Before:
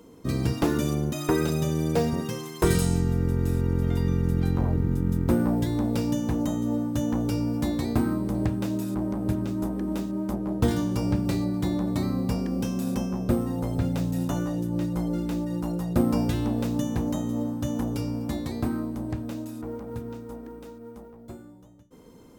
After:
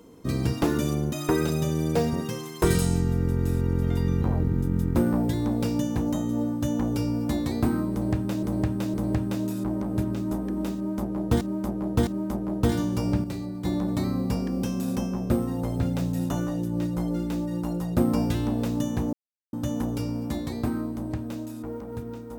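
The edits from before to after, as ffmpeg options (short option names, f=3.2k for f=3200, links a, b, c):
-filter_complex "[0:a]asplit=10[a][b][c][d][e][f][g][h][i][j];[a]atrim=end=4.222[k];[b]atrim=start=4.548:end=8.762[l];[c]atrim=start=8.248:end=8.762[m];[d]atrim=start=8.248:end=10.722[n];[e]atrim=start=10.058:end=10.722[o];[f]atrim=start=10.058:end=11.232[p];[g]atrim=start=11.228:end=11.642,asetpts=PTS-STARTPTS,volume=-6.5dB[q];[h]atrim=start=11.638:end=17.12,asetpts=PTS-STARTPTS,afade=t=out:st=5.478:d=0.004:c=hsin[r];[i]atrim=start=17.12:end=17.52,asetpts=PTS-STARTPTS,volume=0[s];[j]atrim=start=17.52,asetpts=PTS-STARTPTS,afade=t=in:d=0.004:c=hsin[t];[k][l]acrossfade=d=0.004:c1=hsin:c2=hsin[u];[u][m]acrossfade=d=0.004:c1=hsin:c2=hsin[v];[v][n]acrossfade=d=0.004:c1=hsin:c2=hsin[w];[w][o]acrossfade=d=0.004:c1=hsin:c2=hsin[x];[x][p]acrossfade=d=0.004:c1=hsin:c2=hsin[y];[y][q]acrossfade=d=0.004:c1=hsin:c2=hsin[z];[r][s][t]concat=n=3:v=0:a=1[aa];[z][aa]acrossfade=d=0.004:c1=hsin:c2=hsin"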